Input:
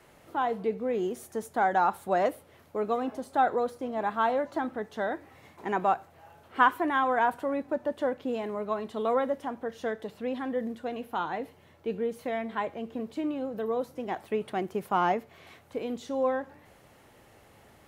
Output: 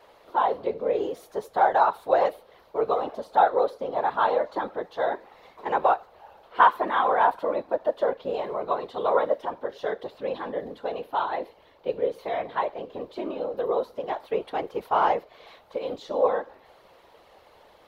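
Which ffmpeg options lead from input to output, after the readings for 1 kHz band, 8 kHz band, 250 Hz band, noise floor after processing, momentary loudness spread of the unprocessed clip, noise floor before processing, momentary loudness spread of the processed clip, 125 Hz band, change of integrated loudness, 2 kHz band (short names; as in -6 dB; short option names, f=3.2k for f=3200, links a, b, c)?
+4.5 dB, n/a, -5.0 dB, -56 dBFS, 10 LU, -58 dBFS, 12 LU, -3.5 dB, +4.0 dB, +1.0 dB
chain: -af "afftfilt=real='hypot(re,im)*cos(2*PI*random(0))':imag='hypot(re,im)*sin(2*PI*random(1))':win_size=512:overlap=0.75,equalizer=f=125:t=o:w=1:g=-7,equalizer=f=250:t=o:w=1:g=-4,equalizer=f=500:t=o:w=1:g=9,equalizer=f=1k:t=o:w=1:g=8,equalizer=f=4k:t=o:w=1:g=11,equalizer=f=8k:t=o:w=1:g=-7,volume=2dB"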